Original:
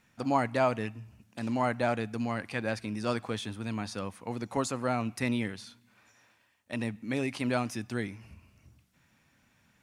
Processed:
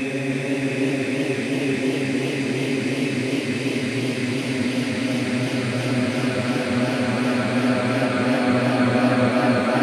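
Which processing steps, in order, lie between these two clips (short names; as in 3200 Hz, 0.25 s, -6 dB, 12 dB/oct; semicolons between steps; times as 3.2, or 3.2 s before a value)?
Paulstretch 30×, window 0.50 s, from 7.22; warbling echo 0.318 s, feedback 78%, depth 144 cents, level -6.5 dB; gain +7.5 dB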